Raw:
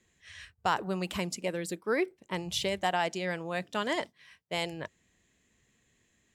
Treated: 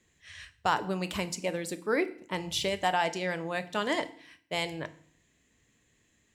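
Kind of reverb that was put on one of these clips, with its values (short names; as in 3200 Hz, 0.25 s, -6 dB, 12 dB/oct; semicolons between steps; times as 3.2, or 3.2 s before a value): FDN reverb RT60 0.54 s, low-frequency decay 1.35×, high-frequency decay 0.95×, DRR 10.5 dB; gain +1 dB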